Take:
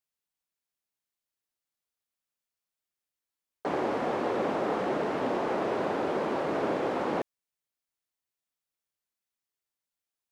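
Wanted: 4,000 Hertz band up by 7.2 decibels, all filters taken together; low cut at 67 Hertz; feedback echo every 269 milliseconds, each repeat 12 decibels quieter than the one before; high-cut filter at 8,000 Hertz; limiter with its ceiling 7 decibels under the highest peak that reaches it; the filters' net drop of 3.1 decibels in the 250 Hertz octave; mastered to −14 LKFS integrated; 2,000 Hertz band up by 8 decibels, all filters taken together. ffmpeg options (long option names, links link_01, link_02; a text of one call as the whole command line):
ffmpeg -i in.wav -af "highpass=67,lowpass=8000,equalizer=frequency=250:width_type=o:gain=-4.5,equalizer=frequency=2000:width_type=o:gain=9,equalizer=frequency=4000:width_type=o:gain=6,alimiter=limit=-23.5dB:level=0:latency=1,aecho=1:1:269|538|807:0.251|0.0628|0.0157,volume=18dB" out.wav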